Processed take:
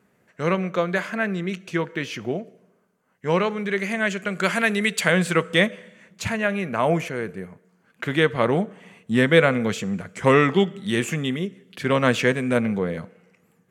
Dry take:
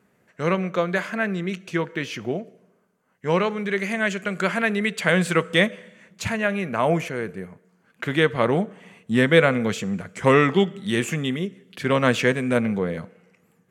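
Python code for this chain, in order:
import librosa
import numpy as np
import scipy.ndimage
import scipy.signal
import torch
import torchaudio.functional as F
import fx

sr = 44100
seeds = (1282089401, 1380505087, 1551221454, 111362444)

y = fx.high_shelf(x, sr, hz=3500.0, db=9.5, at=(4.43, 5.08))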